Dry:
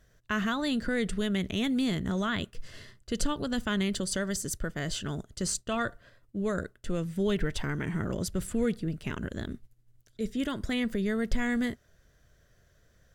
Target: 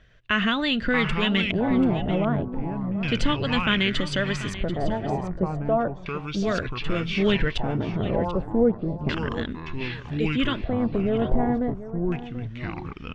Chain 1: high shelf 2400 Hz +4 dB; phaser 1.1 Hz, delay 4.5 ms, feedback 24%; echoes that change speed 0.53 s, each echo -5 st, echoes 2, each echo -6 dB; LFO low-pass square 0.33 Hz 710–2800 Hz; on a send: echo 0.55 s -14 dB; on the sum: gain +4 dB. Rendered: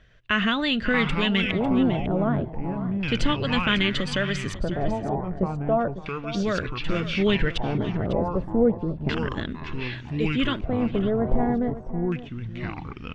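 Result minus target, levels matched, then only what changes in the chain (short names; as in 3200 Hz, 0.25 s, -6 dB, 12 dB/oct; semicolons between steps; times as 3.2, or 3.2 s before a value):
echo 0.187 s early
change: echo 0.737 s -14 dB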